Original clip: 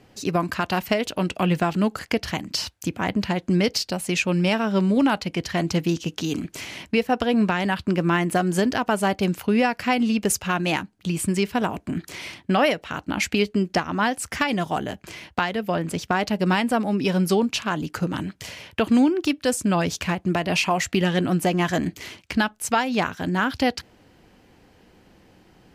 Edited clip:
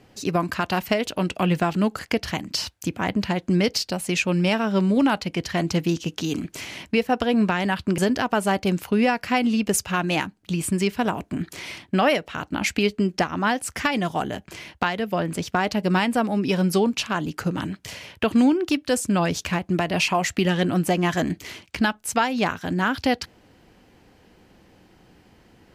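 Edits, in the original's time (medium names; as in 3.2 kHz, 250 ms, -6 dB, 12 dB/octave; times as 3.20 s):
7.98–8.54 s: delete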